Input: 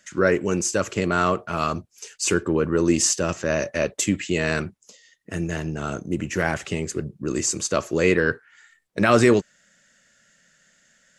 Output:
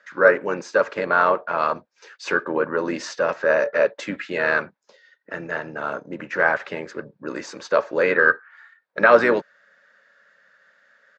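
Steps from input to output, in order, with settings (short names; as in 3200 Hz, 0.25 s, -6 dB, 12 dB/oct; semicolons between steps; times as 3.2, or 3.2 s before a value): speaker cabinet 330–4100 Hz, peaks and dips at 360 Hz -6 dB, 550 Hz +9 dB, 930 Hz +9 dB, 1600 Hz +10 dB, 3000 Hz -7 dB; harmoniser -4 st -11 dB; gain -1 dB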